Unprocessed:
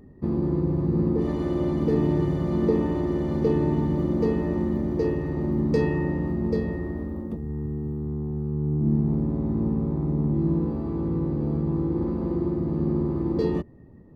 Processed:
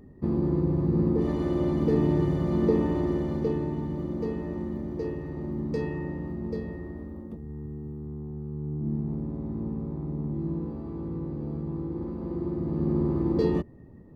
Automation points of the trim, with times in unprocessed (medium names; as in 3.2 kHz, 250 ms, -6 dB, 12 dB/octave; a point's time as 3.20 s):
3.09 s -1 dB
3.71 s -7.5 dB
12.15 s -7.5 dB
13.08 s 0 dB